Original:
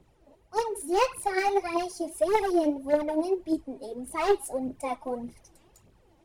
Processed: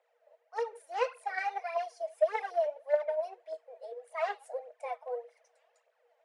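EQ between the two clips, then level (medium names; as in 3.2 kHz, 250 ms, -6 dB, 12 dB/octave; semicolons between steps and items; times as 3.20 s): rippled Chebyshev high-pass 460 Hz, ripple 9 dB; low-pass 9.1 kHz 24 dB/octave; tilt EQ -2.5 dB/octave; 0.0 dB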